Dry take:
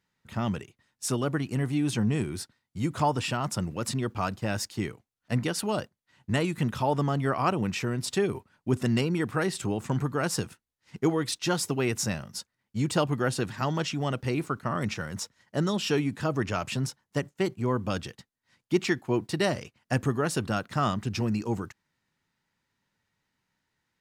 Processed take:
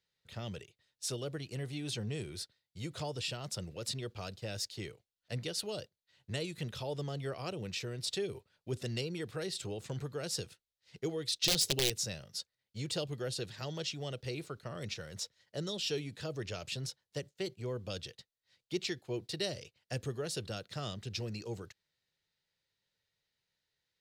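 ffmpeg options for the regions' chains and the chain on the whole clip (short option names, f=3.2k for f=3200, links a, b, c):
-filter_complex "[0:a]asettb=1/sr,asplit=3[a][b][c];[a]atrim=end=11.424[d];[b]atrim=start=11.42:end=11.9,asetpts=PTS-STARTPTS,afade=t=in:d=0.004:c=qsin,afade=t=out:st=0.476:d=0.004:c=qsin,acontrast=54,aeval=exprs='(mod(5.01*val(0)+1,2)-1)/5.01':c=same[e];[c]atrim=start=11.896[f];[d][e]acrossfade=d=0.004:c1=hsin:c2=qsin[g];[g][f]acrossfade=d=0.004:c1=qsin:c2=hsin,equalizer=f=250:t=o:w=1:g=-11,equalizer=f=500:t=o:w=1:g=8,equalizer=f=1k:t=o:w=1:g=-8,equalizer=f=4k:t=o:w=1:g=10,acrossover=split=450|3000[h][i][j];[i]acompressor=threshold=-40dB:ratio=2[k];[h][k][j]amix=inputs=3:normalize=0,volume=-8.5dB"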